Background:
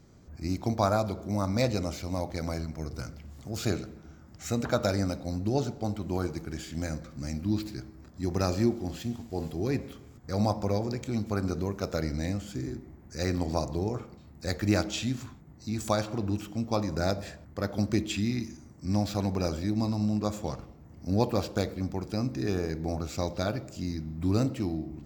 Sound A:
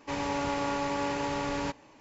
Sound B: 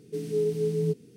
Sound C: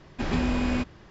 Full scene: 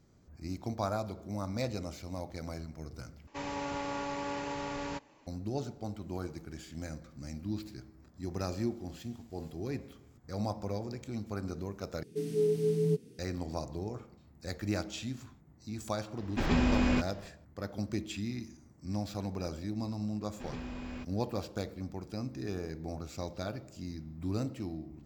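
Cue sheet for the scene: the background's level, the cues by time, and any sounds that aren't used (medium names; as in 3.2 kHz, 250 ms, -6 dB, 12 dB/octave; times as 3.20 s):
background -8 dB
3.27 s: replace with A -6 dB
12.03 s: replace with B -2 dB
16.18 s: add C -1.5 dB
20.21 s: add C -16 dB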